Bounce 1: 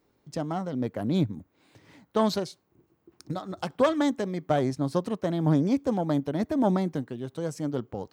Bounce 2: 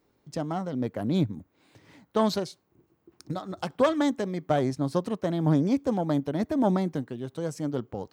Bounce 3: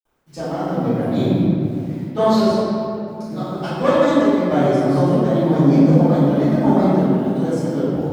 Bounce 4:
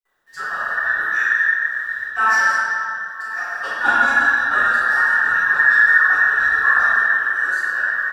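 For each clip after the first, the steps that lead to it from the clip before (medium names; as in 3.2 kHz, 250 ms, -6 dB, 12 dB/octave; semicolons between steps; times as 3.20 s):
no audible change
word length cut 10-bit, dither none; reverberation RT60 2.8 s, pre-delay 3 ms, DRR -20 dB; trim -10.5 dB
every band turned upside down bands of 2 kHz; delay 1044 ms -18.5 dB; trim -1 dB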